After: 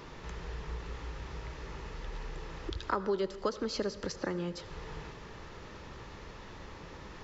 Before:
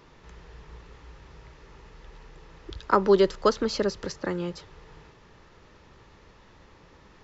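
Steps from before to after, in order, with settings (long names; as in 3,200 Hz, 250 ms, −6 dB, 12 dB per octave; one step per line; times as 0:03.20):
downward compressor 3 to 1, threshold −42 dBFS, peak gain reduction 20 dB
on a send: convolution reverb RT60 1.0 s, pre-delay 69 ms, DRR 14.5 dB
on the sum: level +6.5 dB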